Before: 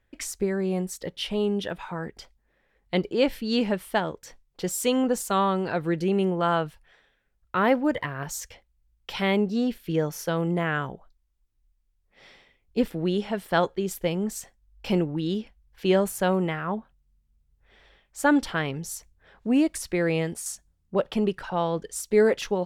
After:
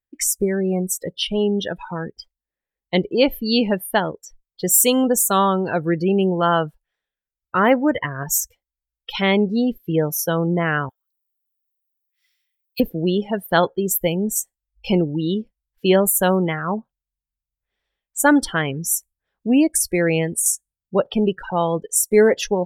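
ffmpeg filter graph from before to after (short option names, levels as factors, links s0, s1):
-filter_complex "[0:a]asettb=1/sr,asplit=3[s0][s1][s2];[s0]atrim=end=10.894[s3];[s1]atrim=start=10.89:end=12.8,asetpts=PTS-STARTPTS,afade=t=in:d=0.004:c=qsin,afade=t=out:st=1.906:d=0.004:c=qsin,highpass=f=1400:w=0.5412,highpass=f=1400:w=1.3066,aemphasis=mode=production:type=50fm,bandreject=f=7800:w=20[s4];[s2]atrim=start=12.796[s5];[s3][s4]acrossfade=d=0.004:c1=hsin:c2=qsin[s6];[s6][s5]acrossfade=d=0.004:c1=qsin:c2=hsin,aemphasis=mode=production:type=50fm,afftdn=nr=29:nf=-33,volume=2"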